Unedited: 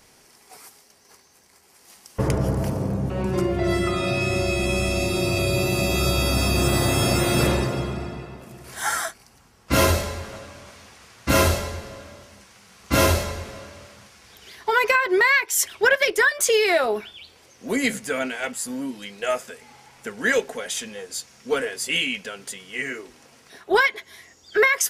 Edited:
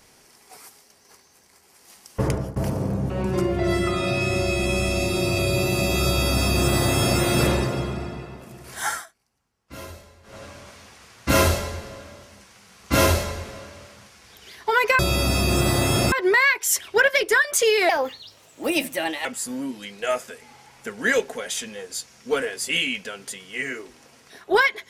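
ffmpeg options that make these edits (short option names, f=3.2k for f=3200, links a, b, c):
-filter_complex "[0:a]asplit=8[a][b][c][d][e][f][g][h];[a]atrim=end=2.56,asetpts=PTS-STARTPTS,afade=t=out:st=2.26:d=0.3:silence=0.1[i];[b]atrim=start=2.56:end=9.06,asetpts=PTS-STARTPTS,afade=t=in:d=0.004:c=hsin:silence=0.1,afade=t=out:st=6.29:d=0.21:silence=0.0944061[j];[c]atrim=start=9.06:end=10.23,asetpts=PTS-STARTPTS,volume=-20.5dB[k];[d]atrim=start=10.23:end=14.992,asetpts=PTS-STARTPTS,afade=t=in:d=0.21:silence=0.0944061[l];[e]atrim=start=6.058:end=7.192[m];[f]atrim=start=14.988:end=16.764[n];[g]atrim=start=16.76:end=18.45,asetpts=PTS-STARTPTS,asetrate=54684,aresample=44100,atrim=end_sample=60104,asetpts=PTS-STARTPTS[o];[h]atrim=start=18.446[p];[i][j][k][l]concat=n=4:v=0:a=1[q];[q][m]acrossfade=d=0.004:c1=hsin:c2=hsin[r];[r][n]acrossfade=d=0.004:c1=hsin:c2=hsin[s];[s][o]acrossfade=d=0.004:c1=hsin:c2=hsin[t];[t][p]acrossfade=d=0.004:c1=hsin:c2=hsin"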